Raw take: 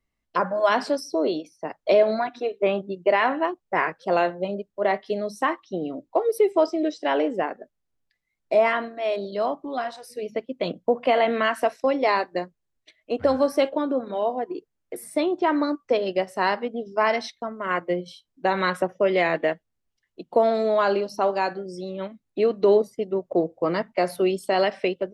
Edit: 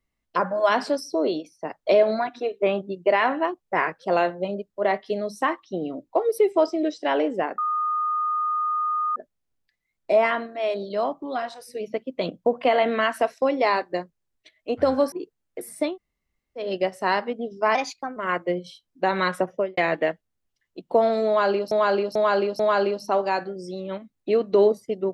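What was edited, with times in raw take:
7.58 s: add tone 1.23 kHz -21.5 dBFS 1.58 s
13.54–14.47 s: delete
15.25–15.98 s: room tone, crossfade 0.16 s
17.10–17.58 s: speed 116%
18.94–19.19 s: studio fade out
20.69–21.13 s: loop, 4 plays

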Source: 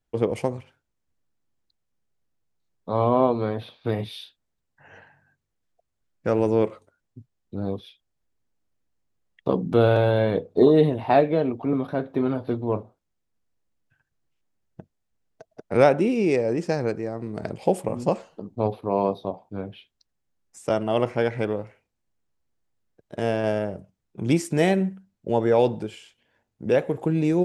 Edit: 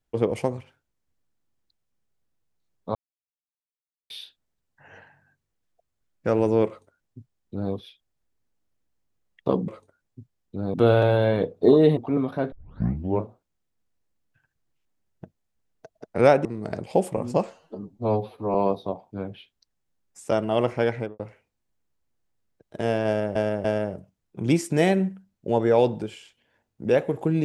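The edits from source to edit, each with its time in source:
2.95–4.10 s: mute
6.67–7.73 s: copy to 9.68 s
10.91–11.53 s: delete
12.08 s: tape start 0.70 s
16.01–17.17 s: delete
18.26–18.93 s: stretch 1.5×
21.31–21.58 s: studio fade out
23.45–23.74 s: loop, 3 plays

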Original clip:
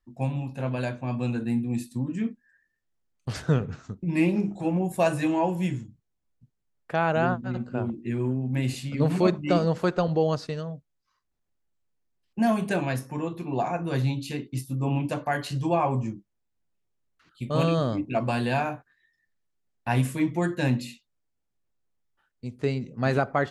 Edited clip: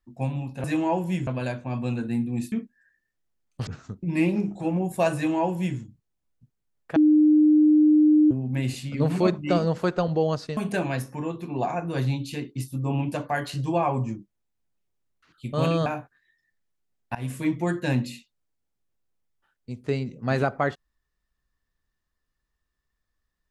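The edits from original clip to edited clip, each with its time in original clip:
1.89–2.20 s: delete
3.35–3.67 s: delete
5.15–5.78 s: copy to 0.64 s
6.96–8.31 s: bleep 304 Hz -13.5 dBFS
10.57–12.54 s: delete
17.83–18.61 s: delete
19.90–20.19 s: fade in, from -22.5 dB

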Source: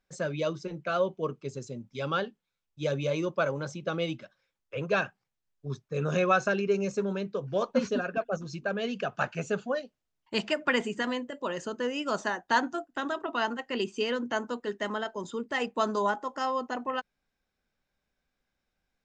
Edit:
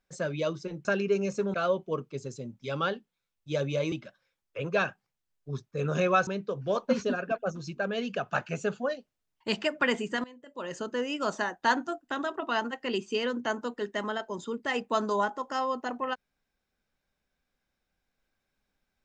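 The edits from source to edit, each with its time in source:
3.23–4.09 s: delete
6.44–7.13 s: move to 0.85 s
11.10–11.63 s: fade in quadratic, from -18.5 dB

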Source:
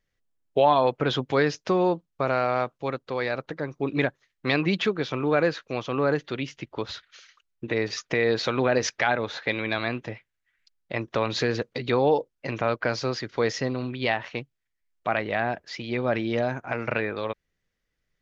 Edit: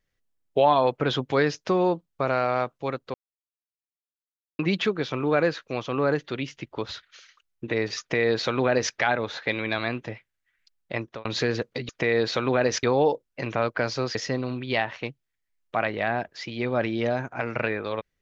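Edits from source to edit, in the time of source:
3.14–4.59 s: mute
8.00–8.94 s: copy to 11.89 s
10.96–11.25 s: fade out
13.21–13.47 s: delete

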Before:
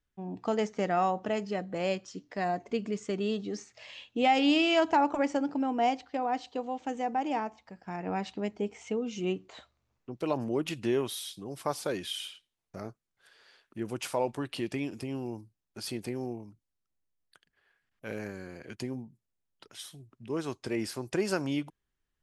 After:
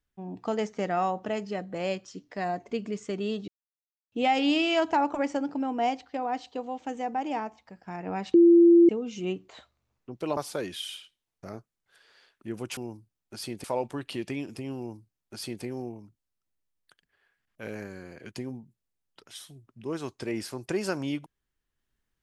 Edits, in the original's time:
3.48–4.12 s: mute
8.34–8.89 s: bleep 341 Hz -12.5 dBFS
10.37–11.68 s: delete
15.21–16.08 s: copy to 14.08 s

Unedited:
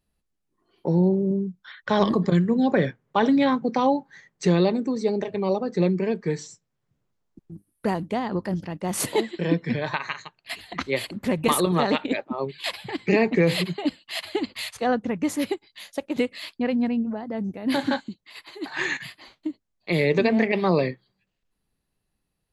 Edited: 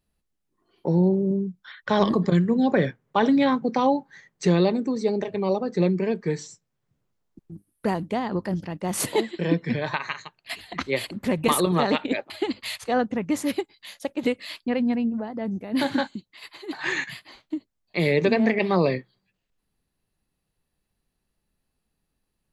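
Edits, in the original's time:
12.30–14.23 s: delete

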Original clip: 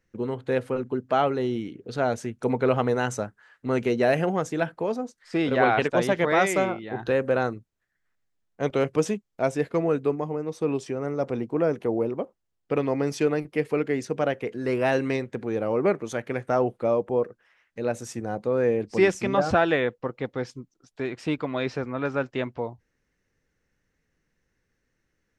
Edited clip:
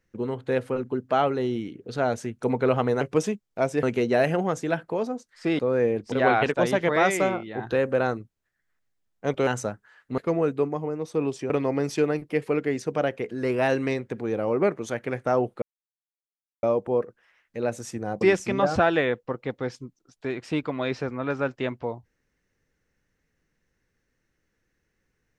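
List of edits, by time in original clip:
3.01–3.72 s: swap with 8.83–9.65 s
10.97–12.73 s: delete
16.85 s: insert silence 1.01 s
18.43–18.96 s: move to 5.48 s

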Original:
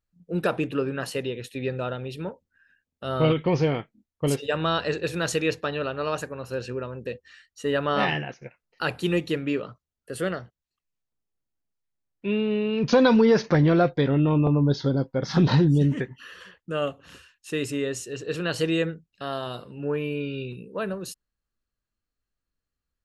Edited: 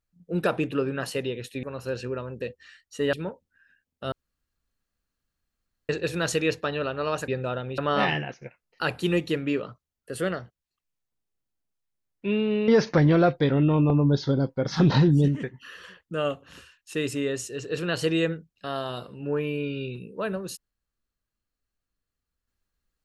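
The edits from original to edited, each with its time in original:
1.63–2.13 s: swap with 6.28–7.78 s
3.12–4.89 s: room tone
12.68–13.25 s: delete
15.85–16.17 s: gain -3.5 dB

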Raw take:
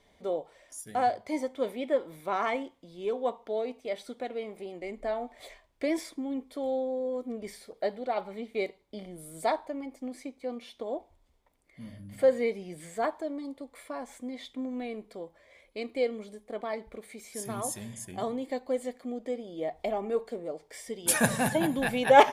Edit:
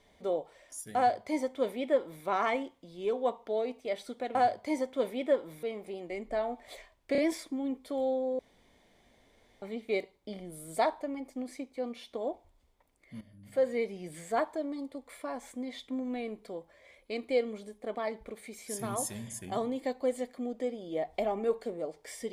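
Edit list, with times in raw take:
0.97–2.25 s: copy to 4.35 s
5.84 s: stutter 0.03 s, 3 plays
7.05–8.28 s: room tone
11.87–12.77 s: fade in, from -14 dB

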